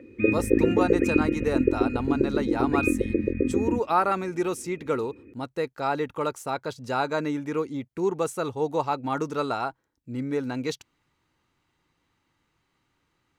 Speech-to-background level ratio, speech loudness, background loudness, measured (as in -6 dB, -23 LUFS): -4.0 dB, -29.0 LUFS, -25.0 LUFS